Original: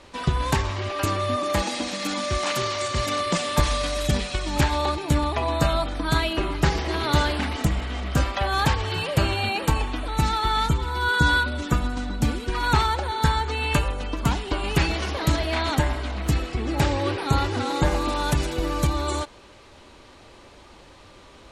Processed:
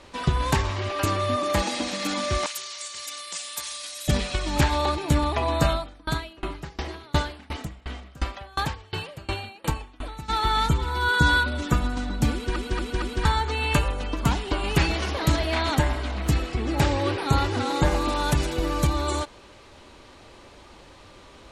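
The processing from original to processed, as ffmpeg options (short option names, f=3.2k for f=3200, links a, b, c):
-filter_complex "[0:a]asettb=1/sr,asplit=3[a][b][c];[a]atrim=end=2.464[d];[b]atrim=start=2.46:end=4.08,asetpts=PTS-STARTPTS,afade=t=in:d=0.004:c=qsin,afade=t=out:st=1.616:d=0.004:c=qsin,aderivative[e];[c]atrim=start=4.076[f];[d][e]acrossfade=d=0.004:c1=hsin:c2=qsin[g];[g][f]acrossfade=d=0.004:c1=qsin:c2=hsin,asplit=3[h][i][j];[h]afade=t=out:st=5.71:d=0.02[k];[i]aeval=exprs='val(0)*pow(10,-28*if(lt(mod(2.8*n/s,1),2*abs(2.8)/1000),1-mod(2.8*n/s,1)/(2*abs(2.8)/1000),(mod(2.8*n/s,1)-2*abs(2.8)/1000)/(1-2*abs(2.8)/1000))/20)':c=same,afade=t=in:st=5.71:d=0.02,afade=t=out:st=10.28:d=0.02[l];[j]afade=t=in:st=10.28:d=0.02[m];[k][l][m]amix=inputs=3:normalize=0,asplit=5[n][o][p][q][r];[n]atrim=end=12.562[s];[o]atrim=start=12.328:end=12.562[t];[p]atrim=start=12.328:end=12.562[u];[q]atrim=start=12.328:end=12.562[v];[r]atrim=start=13.248[w];[s][t]acrossfade=d=0.004:c1=hsin:c2=hsin[x];[x][u]acrossfade=d=0.004:c1=hsin:c2=hsin[y];[y][v]acrossfade=d=0.004:c1=hsin:c2=hsin[z];[z][w]acrossfade=d=0.004:c1=hsin:c2=hsin"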